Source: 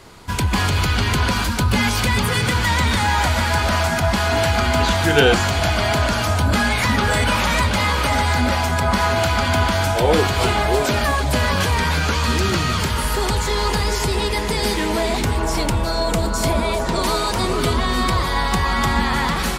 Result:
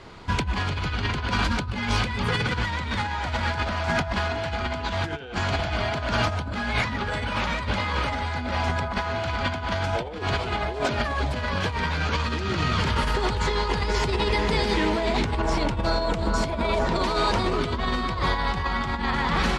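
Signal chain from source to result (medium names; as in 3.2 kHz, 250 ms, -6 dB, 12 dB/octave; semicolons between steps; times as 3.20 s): low-pass 4.2 kHz 12 dB/octave; compressor with a negative ratio -21 dBFS, ratio -0.5; trim -3.5 dB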